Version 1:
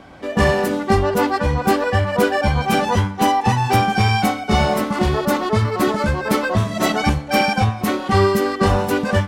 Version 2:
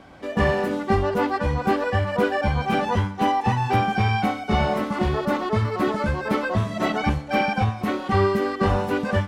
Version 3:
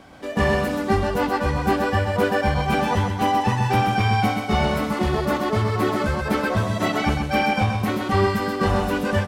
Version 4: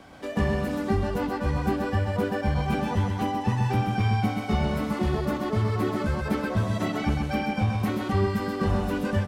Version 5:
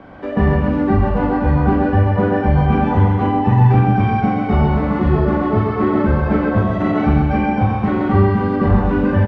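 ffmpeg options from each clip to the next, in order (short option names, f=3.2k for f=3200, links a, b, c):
-filter_complex "[0:a]acrossover=split=3600[a][b];[b]acompressor=threshold=-43dB:ratio=4:attack=1:release=60[c];[a][c]amix=inputs=2:normalize=0,volume=-4.5dB"
-filter_complex "[0:a]highshelf=f=5.8k:g=9,asplit=2[a][b];[b]aecho=0:1:129|258|387|516:0.531|0.186|0.065|0.0228[c];[a][c]amix=inputs=2:normalize=0"
-filter_complex "[0:a]acrossover=split=350[a][b];[b]acompressor=threshold=-31dB:ratio=2.5[c];[a][c]amix=inputs=2:normalize=0,volume=-2dB"
-filter_complex "[0:a]lowpass=1.7k,asplit=2[a][b];[b]aecho=0:1:40|88|145.6|214.7|297.7:0.631|0.398|0.251|0.158|0.1[c];[a][c]amix=inputs=2:normalize=0,volume=8.5dB"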